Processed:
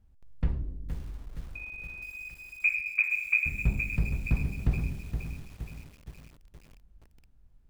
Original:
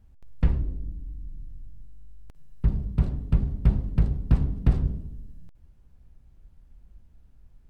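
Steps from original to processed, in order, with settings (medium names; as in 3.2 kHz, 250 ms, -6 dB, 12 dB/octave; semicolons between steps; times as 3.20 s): 1.55–3.46 s: frequency inversion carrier 2.5 kHz; bit-crushed delay 469 ms, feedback 55%, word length 7-bit, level -7.5 dB; trim -6.5 dB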